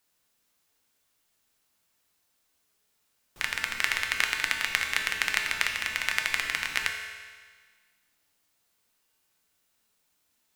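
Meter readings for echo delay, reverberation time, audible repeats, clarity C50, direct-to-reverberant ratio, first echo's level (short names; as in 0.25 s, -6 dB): none, 1.6 s, none, 4.5 dB, 1.5 dB, none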